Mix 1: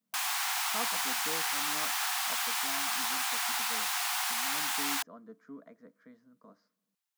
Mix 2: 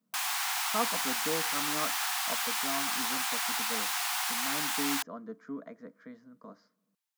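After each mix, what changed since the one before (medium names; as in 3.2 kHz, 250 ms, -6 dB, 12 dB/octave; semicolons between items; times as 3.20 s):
speech +7.5 dB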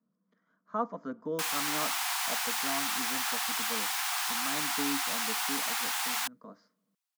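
background: entry +1.25 s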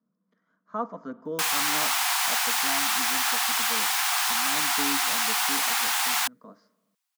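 speech: send +11.0 dB; background +7.0 dB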